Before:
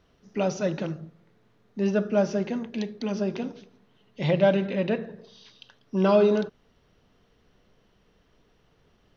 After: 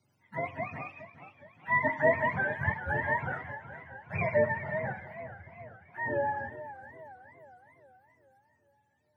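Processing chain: spectrum mirrored in octaves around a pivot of 610 Hz; Doppler pass-by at 2.65, 21 m/s, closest 17 m; warbling echo 0.416 s, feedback 53%, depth 127 cents, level -13 dB; gain +2.5 dB

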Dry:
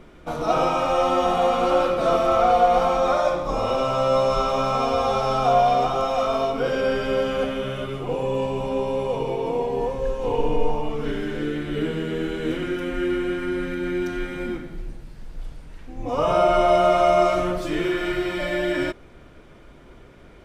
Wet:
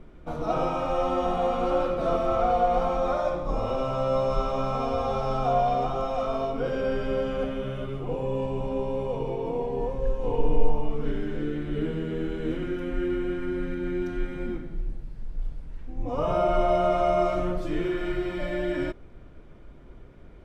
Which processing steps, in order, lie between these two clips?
tilt -2 dB/oct; gain -7 dB

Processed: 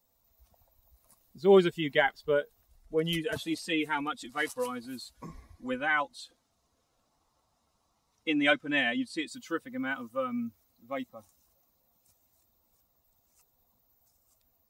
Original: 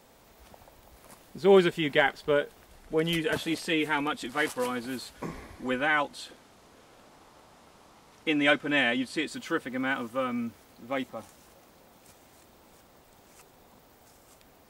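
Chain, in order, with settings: per-bin expansion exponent 1.5

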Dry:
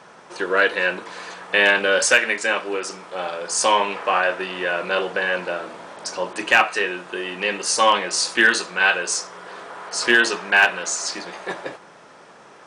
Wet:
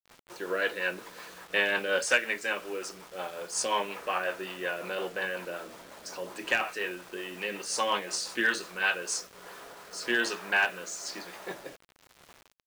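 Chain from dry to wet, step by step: rotary speaker horn 5.5 Hz, later 1.1 Hz, at 8.66; bit-crush 7-bit; gain -8 dB

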